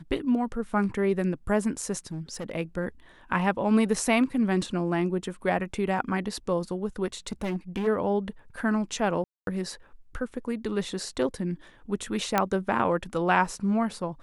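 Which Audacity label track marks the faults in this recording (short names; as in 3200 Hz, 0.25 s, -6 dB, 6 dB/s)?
2.110000	2.520000	clipped -30 dBFS
7.270000	7.880000	clipped -25.5 dBFS
9.240000	9.470000	gap 0.232 s
12.380000	12.380000	pop -8 dBFS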